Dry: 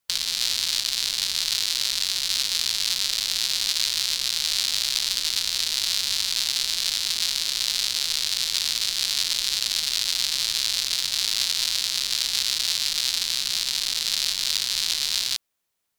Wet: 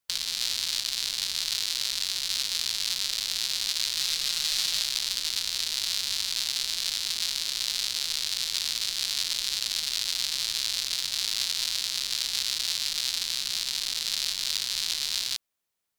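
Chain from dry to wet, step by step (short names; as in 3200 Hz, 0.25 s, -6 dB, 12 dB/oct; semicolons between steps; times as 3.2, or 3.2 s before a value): 3.98–4.84 comb 6.3 ms, depth 69%; gain -4.5 dB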